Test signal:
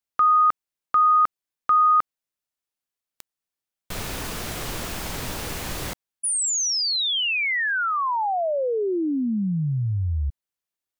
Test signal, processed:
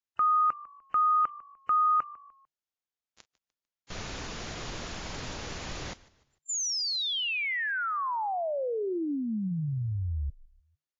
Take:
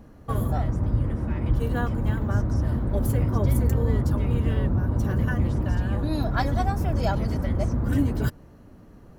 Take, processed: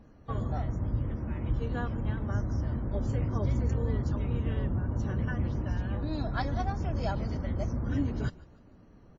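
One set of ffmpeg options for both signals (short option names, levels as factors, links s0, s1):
-filter_complex "[0:a]asplit=4[s0][s1][s2][s3];[s1]adelay=149,afreqshift=-51,volume=0.0891[s4];[s2]adelay=298,afreqshift=-102,volume=0.0339[s5];[s3]adelay=447,afreqshift=-153,volume=0.0129[s6];[s0][s4][s5][s6]amix=inputs=4:normalize=0,volume=0.447" -ar 16000 -c:a wmav2 -b:a 32k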